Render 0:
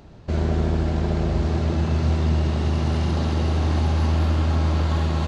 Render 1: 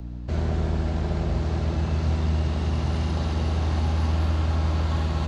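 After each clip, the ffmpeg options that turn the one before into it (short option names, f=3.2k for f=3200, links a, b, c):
-filter_complex "[0:a]aeval=exprs='val(0)+0.0316*(sin(2*PI*60*n/s)+sin(2*PI*2*60*n/s)/2+sin(2*PI*3*60*n/s)/3+sin(2*PI*4*60*n/s)/4+sin(2*PI*5*60*n/s)/5)':c=same,acrossover=split=230|400|2000[a][b][c][d];[b]asoftclip=type=tanh:threshold=-38dB[e];[a][e][c][d]amix=inputs=4:normalize=0,volume=-3dB"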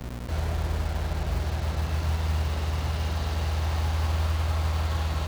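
-filter_complex "[0:a]equalizer=f=270:w=0.77:g=-14,acrossover=split=130|910|2500[a][b][c][d];[a]acrusher=bits=5:mix=0:aa=0.000001[e];[e][b][c][d]amix=inputs=4:normalize=0"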